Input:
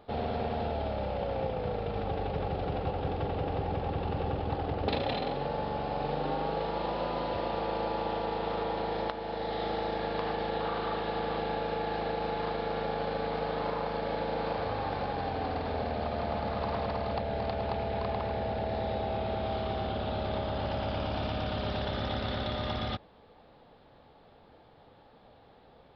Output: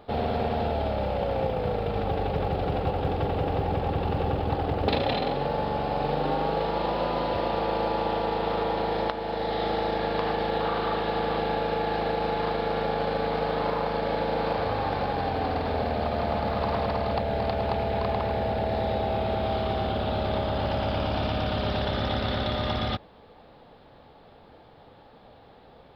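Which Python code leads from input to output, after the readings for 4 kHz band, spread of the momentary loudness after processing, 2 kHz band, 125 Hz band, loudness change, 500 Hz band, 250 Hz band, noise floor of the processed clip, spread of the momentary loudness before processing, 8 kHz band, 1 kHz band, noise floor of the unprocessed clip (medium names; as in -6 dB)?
+5.5 dB, 1 LU, +5.5 dB, +5.5 dB, +5.5 dB, +5.5 dB, +5.5 dB, -52 dBFS, 1 LU, no reading, +5.5 dB, -58 dBFS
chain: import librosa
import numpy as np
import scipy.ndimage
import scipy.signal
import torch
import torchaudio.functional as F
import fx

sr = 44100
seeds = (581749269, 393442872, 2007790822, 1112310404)

y = fx.quant_float(x, sr, bits=6)
y = F.gain(torch.from_numpy(y), 5.5).numpy()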